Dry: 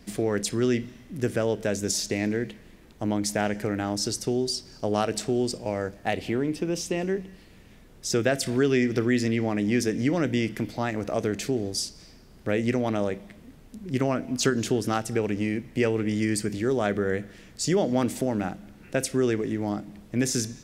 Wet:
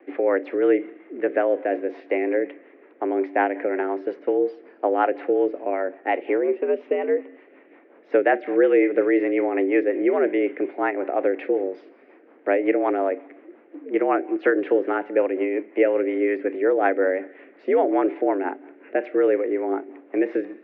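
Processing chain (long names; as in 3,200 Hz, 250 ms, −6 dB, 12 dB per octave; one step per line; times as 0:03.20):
rotating-speaker cabinet horn 5.5 Hz
single-sideband voice off tune +81 Hz 230–2,200 Hz
level +7.5 dB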